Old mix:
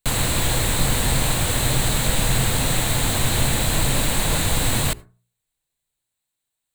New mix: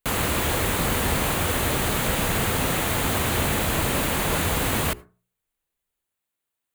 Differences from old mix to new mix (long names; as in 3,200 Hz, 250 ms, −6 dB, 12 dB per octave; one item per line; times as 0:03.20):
background: add high-pass filter 58 Hz
master: add thirty-one-band graphic EQ 125 Hz −11 dB, 400 Hz +4 dB, 1,250 Hz +4 dB, 4,000 Hz −9 dB, 8,000 Hz −10 dB